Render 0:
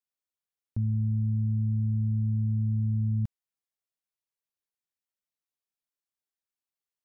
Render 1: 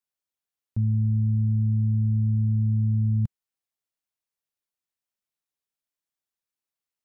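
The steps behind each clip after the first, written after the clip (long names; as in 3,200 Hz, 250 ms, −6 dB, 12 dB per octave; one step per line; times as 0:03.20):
dynamic equaliser 140 Hz, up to +4 dB, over −36 dBFS, Q 0.82
level +1 dB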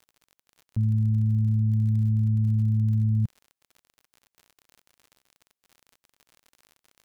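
surface crackle 57 per second −40 dBFS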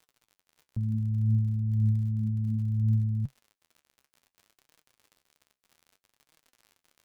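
flanger 0.63 Hz, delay 6 ms, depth 9.4 ms, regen +55%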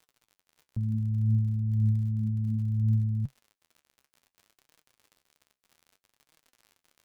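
no processing that can be heard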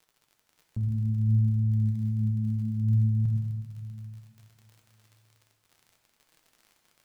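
convolution reverb RT60 2.0 s, pre-delay 4 ms, DRR 2 dB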